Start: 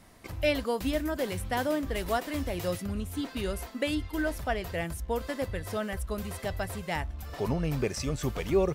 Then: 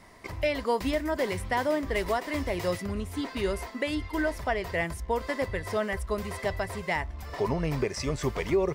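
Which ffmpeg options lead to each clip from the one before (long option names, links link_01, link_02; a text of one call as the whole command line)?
ffmpeg -i in.wav -af "equalizer=frequency=400:width_type=o:width=0.33:gain=6,equalizer=frequency=630:width_type=o:width=0.33:gain=4,equalizer=frequency=1000:width_type=o:width=0.33:gain=9,equalizer=frequency=2000:width_type=o:width=0.33:gain=9,equalizer=frequency=5000:width_type=o:width=0.33:gain=4,equalizer=frequency=12500:width_type=o:width=0.33:gain=-8,alimiter=limit=-17dB:level=0:latency=1:release=201" out.wav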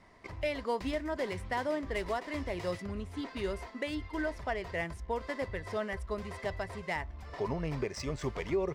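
ffmpeg -i in.wav -af "crystalizer=i=0.5:c=0,adynamicsmooth=sensitivity=6:basefreq=5000,volume=-6dB" out.wav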